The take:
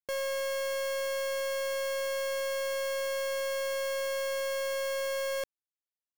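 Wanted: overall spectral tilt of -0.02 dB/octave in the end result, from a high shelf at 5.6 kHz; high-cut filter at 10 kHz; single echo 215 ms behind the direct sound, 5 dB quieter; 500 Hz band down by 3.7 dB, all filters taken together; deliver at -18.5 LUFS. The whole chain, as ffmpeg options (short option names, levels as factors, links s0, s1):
-af "lowpass=10000,equalizer=f=500:t=o:g=-4,highshelf=f=5600:g=6,aecho=1:1:215:0.562,volume=5.31"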